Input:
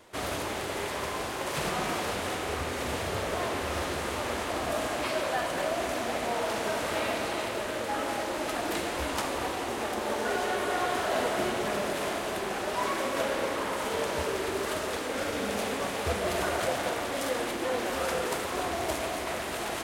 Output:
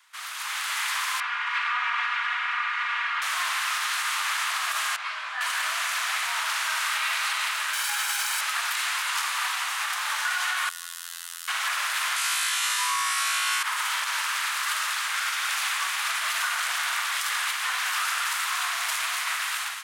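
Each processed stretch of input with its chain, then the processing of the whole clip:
1.20–3.22 s: Butterworth band-pass 1.5 kHz, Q 0.84 + comb 4.2 ms, depth 72%
4.96–5.41 s: tape spacing loss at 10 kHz 21 dB + detune thickener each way 16 cents
7.73–8.41 s: comb filter that takes the minimum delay 1.3 ms + treble shelf 5.5 kHz +9.5 dB
10.69–11.48 s: differentiator + band-stop 2.3 kHz, Q 5.3 + robot voice 85.1 Hz
12.16–13.63 s: low-pass 12 kHz 24 dB/octave + tilt EQ +3 dB/octave + flutter echo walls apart 3.1 m, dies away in 1.5 s
whole clip: steep high-pass 1.1 kHz 36 dB/octave; peak limiter -27 dBFS; level rider gain up to 10 dB

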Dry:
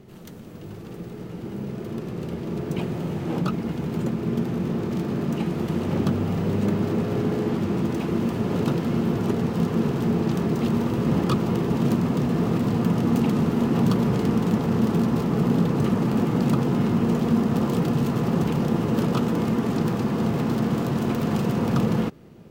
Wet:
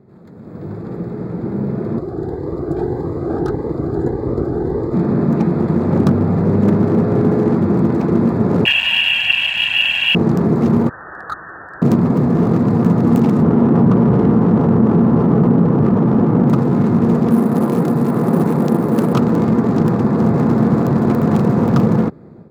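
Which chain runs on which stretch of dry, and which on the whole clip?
1.98–4.94 s: comb filter that takes the minimum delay 2.5 ms + peaking EQ 2.6 kHz -14 dB 0.51 oct + Shepard-style phaser rising 1.7 Hz
8.65–10.15 s: frequency inversion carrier 3.1 kHz + companded quantiser 8-bit + comb 1.2 ms, depth 96%
10.89–11.82 s: steep high-pass 670 Hz 72 dB/octave + frequency inversion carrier 2.5 kHz + distance through air 340 m
13.42–16.50 s: low-pass 1.7 kHz + level flattener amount 50%
17.30–19.13 s: high-pass 160 Hz + careless resampling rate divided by 4×, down none, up hold
whole clip: local Wiener filter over 15 samples; high-pass 73 Hz; level rider gain up to 11.5 dB

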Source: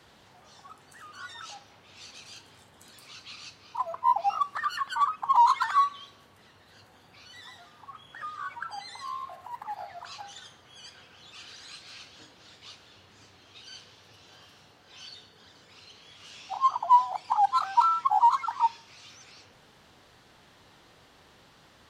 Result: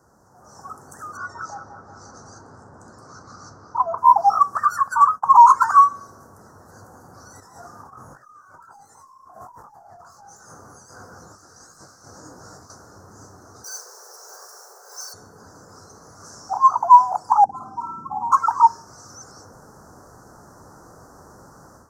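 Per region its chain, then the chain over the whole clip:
1.17–3.98 s: distance through air 130 m + bucket-brigade echo 179 ms, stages 4096, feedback 59%, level -11 dB
4.57–5.28 s: expander -39 dBFS + peaking EQ 330 Hz -13.5 dB 0.43 oct
7.40–12.70 s: hard clipper -39.5 dBFS + compressor with a negative ratio -52 dBFS + detune thickener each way 48 cents
13.64–15.14 s: block-companded coder 5-bit + Chebyshev high-pass 370 Hz, order 10 + treble shelf 2.6 kHz +10.5 dB
17.44–18.32 s: FFT filter 110 Hz 0 dB, 230 Hz +8 dB, 1.4 kHz -27 dB, 5.6 kHz -21 dB + flutter echo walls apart 9 m, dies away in 0.54 s
whole clip: elliptic band-stop 1.4–5.8 kHz, stop band 60 dB; level rider gain up to 12 dB; trim +1 dB

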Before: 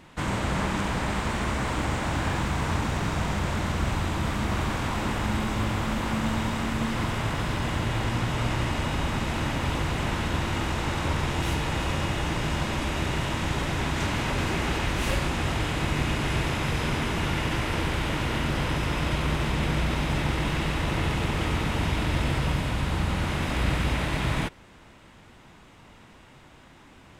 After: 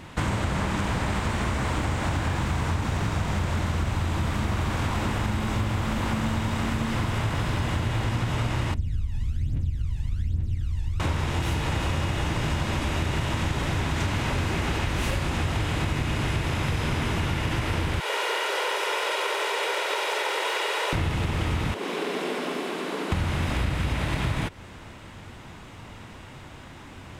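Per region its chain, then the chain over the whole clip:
8.74–11.00 s: amplifier tone stack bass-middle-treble 10-0-1 + phaser 1.2 Hz, delay 1.2 ms, feedback 75%
18.00–20.93 s: Chebyshev high-pass 400 Hz, order 5 + comb 2.1 ms, depth 39%
21.74–23.12 s: frequency shift +110 Hz + ladder high-pass 320 Hz, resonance 40%
whole clip: peaking EQ 94 Hz +6.5 dB 0.69 oct; compression, threshold -30 dBFS; trim +7 dB

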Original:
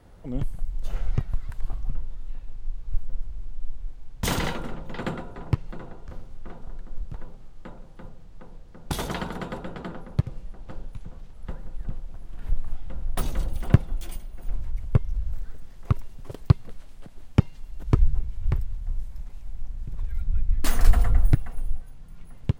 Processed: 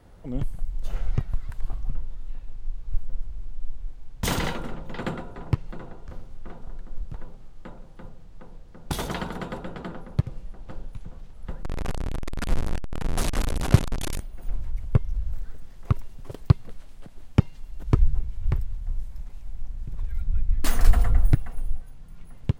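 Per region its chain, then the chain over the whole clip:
11.63–14.20 s: one-bit delta coder 64 kbps, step -20 dBFS + tape noise reduction on one side only decoder only
whole clip: none

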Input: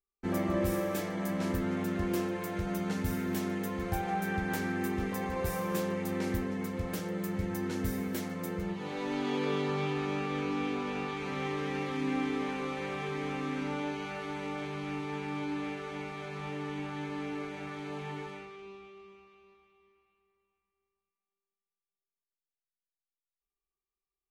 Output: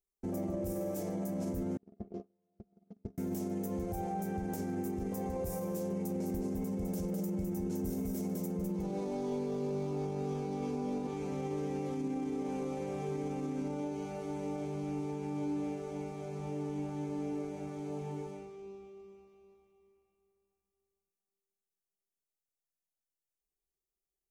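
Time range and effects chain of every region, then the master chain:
1.77–3.18 s: gate -28 dBFS, range -49 dB + low-pass 4.5 kHz 24 dB/octave + small resonant body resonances 220/410/670/1200 Hz, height 13 dB, ringing for 65 ms
5.91–11.07 s: comb 4.9 ms, depth 37% + hard clipper -25.5 dBFS + delay 206 ms -3.5 dB
whole clip: high-order bell 2.1 kHz -14.5 dB 2.4 oct; band-stop 1.8 kHz, Q 14; peak limiter -29.5 dBFS; trim +1 dB

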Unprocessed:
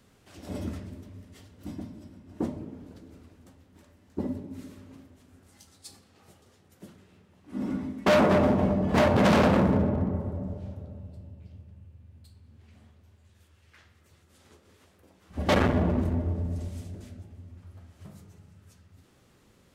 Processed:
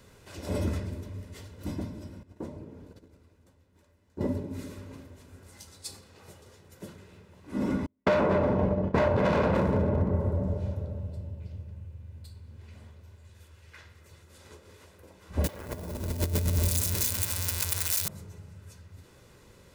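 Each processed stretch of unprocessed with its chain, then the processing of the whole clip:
2.23–4.21 s: gate -48 dBFS, range -13 dB + compression 1.5:1, threshold -60 dBFS
7.86–9.55 s: low-pass 2 kHz 6 dB/octave + gate -26 dBFS, range -42 dB + doubling 42 ms -11.5 dB
15.44–18.08 s: zero-crossing glitches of -21 dBFS + compressor with a negative ratio -32 dBFS, ratio -0.5
whole clip: band-stop 3.1 kHz, Q 20; comb 2 ms, depth 39%; compression 6:1, threshold -27 dBFS; trim +5.5 dB

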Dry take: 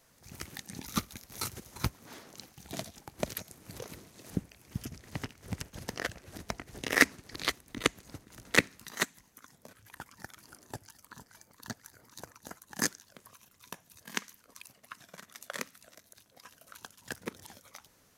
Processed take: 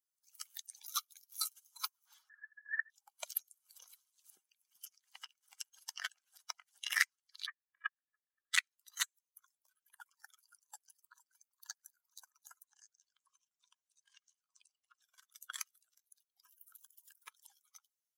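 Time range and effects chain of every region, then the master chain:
2.29–2.90 s: resonant high-pass 770 Hz, resonance Q 9.4 + frequency inversion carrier 2.5 kHz
7.46–8.53 s: comb filter that takes the minimum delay 1.7 ms + four-pole ladder low-pass 2 kHz, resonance 65%
12.64–15.02 s: low-pass 9 kHz 24 dB/octave + compression 12:1, threshold -47 dBFS
16.44–17.25 s: treble shelf 11 kHz +11.5 dB + band-stop 790 Hz, Q 15 + compression, threshold -46 dBFS
whole clip: expander on every frequency bin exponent 2; high-pass 1.4 kHz 24 dB/octave; compression 2.5:1, threshold -50 dBFS; trim +13 dB

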